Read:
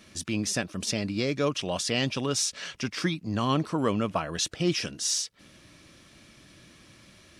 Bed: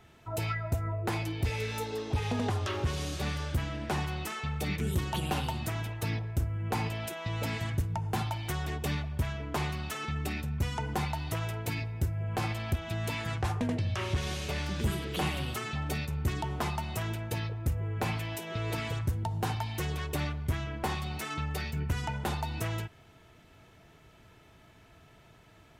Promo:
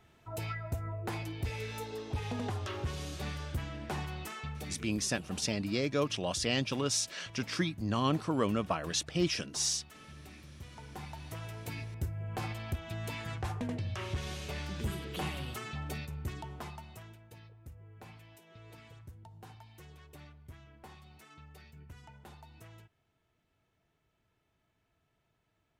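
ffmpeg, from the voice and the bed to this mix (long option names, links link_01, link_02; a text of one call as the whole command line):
ffmpeg -i stem1.wav -i stem2.wav -filter_complex "[0:a]adelay=4550,volume=-4dB[link_01];[1:a]volume=7dB,afade=type=out:start_time=4.43:duration=0.46:silence=0.237137,afade=type=in:start_time=10.69:duration=1.3:silence=0.237137,afade=type=out:start_time=15.82:duration=1.37:silence=0.188365[link_02];[link_01][link_02]amix=inputs=2:normalize=0" out.wav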